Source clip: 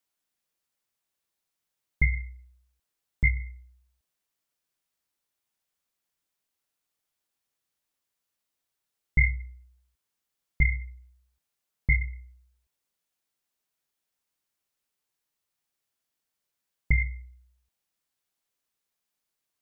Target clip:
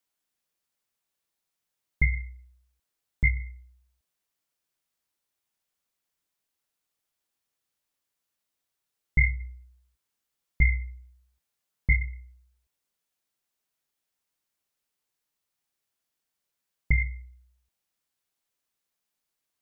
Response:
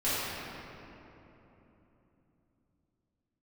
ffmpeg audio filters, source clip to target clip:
-filter_complex "[0:a]asettb=1/sr,asplit=3[a][b][c];[a]atrim=end=9.394[d];[b]atrim=start=9.39:end=11.92,asetpts=PTS-STARTPTS,afade=t=in:d=0.004:c=qsin,afade=t=out:st=2.526:d=0.004:c=qsin,asplit=2[e][f];[f]adelay=17,volume=-9dB[g];[e][g]amix=inputs=2:normalize=0,atrim=end_sample=111573[h];[c]atrim=start=11.916[i];[d][h]acrossfade=d=0.004:c1=hsin:c2=qsin[j];[j][i]acrossfade=d=0.004:c1=qsin:c2=hsin"

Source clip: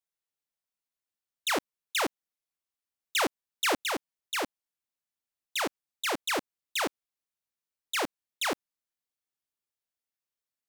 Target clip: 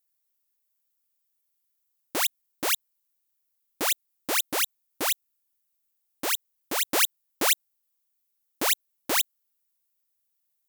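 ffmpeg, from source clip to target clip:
-af "areverse,aemphasis=mode=production:type=50fm"

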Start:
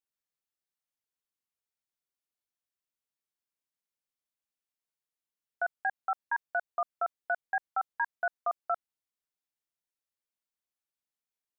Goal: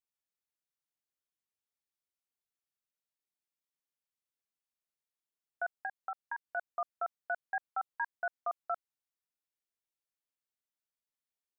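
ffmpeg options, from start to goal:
-filter_complex "[0:a]asettb=1/sr,asplit=3[a][b][c];[a]atrim=end=5.744[d];[b]atrim=start=5.74:end=6.57,asetpts=PTS-STARTPTS,afade=t=in:d=0.004:c=qsin,afade=t=out:st=0.826:d=0.004:c=qsin,acompressor=threshold=-31dB:ratio=6[e];[c]atrim=start=6.566[f];[d][e]acrossfade=d=0.004:c1=hsin:c2=qsin[g];[g][f]acrossfade=d=0.004:c1=qsin:c2=hsin,volume=-4.5dB"

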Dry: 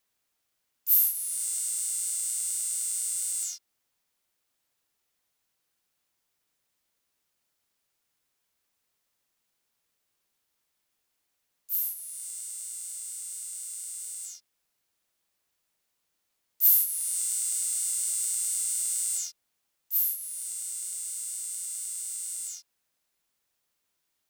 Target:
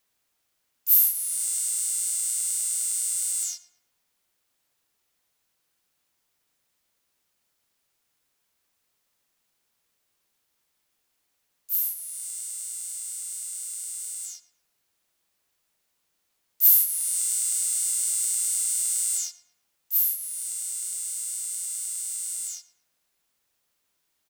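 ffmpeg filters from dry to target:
-filter_complex "[0:a]asplit=2[a][b];[b]adelay=115,lowpass=f=2.6k:p=1,volume=-14dB,asplit=2[c][d];[d]adelay=115,lowpass=f=2.6k:p=1,volume=0.48,asplit=2[e][f];[f]adelay=115,lowpass=f=2.6k:p=1,volume=0.48,asplit=2[g][h];[h]adelay=115,lowpass=f=2.6k:p=1,volume=0.48,asplit=2[i][j];[j]adelay=115,lowpass=f=2.6k:p=1,volume=0.48[k];[a][c][e][g][i][k]amix=inputs=6:normalize=0,volume=3.5dB"

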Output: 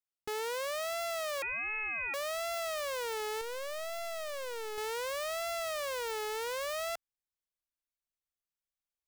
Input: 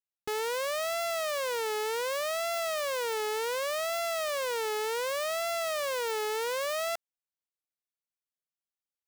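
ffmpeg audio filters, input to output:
-filter_complex "[0:a]asettb=1/sr,asplit=3[a][b][c];[a]atrim=end=1.424[d];[b]atrim=start=1.42:end=2.14,asetpts=PTS-STARTPTS,afade=t=in:d=0.004:c=qsin,afade=t=out:st=0.716:d=0.004:c=qsin,lowpass=f=2.6k:t=q:w=0.5098,lowpass=f=2.6k:t=q:w=0.6013,lowpass=f=2.6k:t=q:w=0.9,lowpass=f=2.6k:t=q:w=2.563,afreqshift=-3000[e];[c]atrim=start=2.136[f];[d][e]acrossfade=d=0.004:c1=hsin:c2=qsin[g];[g][f]acrossfade=d=0.004:c1=qsin:c2=hsin,asubboost=boost=5.5:cutoff=84,asettb=1/sr,asplit=3[h][i][j];[h]atrim=end=3.414[k];[i]atrim=start=3.41:end=4.78,asetpts=PTS-STARTPTS,afade=t=in:d=0.004:c=qsin,afade=t=out:st=1.366:d=0.004:c=qsin,aeval=exprs='clip(val(0),-1,0.00708)':c=same[l];[j]atrim=start=4.776[m];[k][l]acrossfade=d=0.004:c1=hsin:c2=qsin[n];[n][m]acrossfade=d=0.004:c1=qsin:c2=hsin,volume=-4dB"

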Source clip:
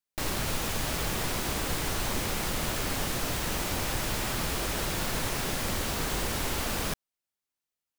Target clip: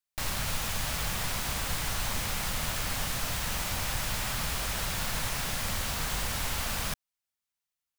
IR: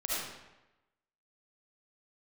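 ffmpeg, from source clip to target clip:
-af "equalizer=f=350:t=o:w=1.2:g=-12.5"

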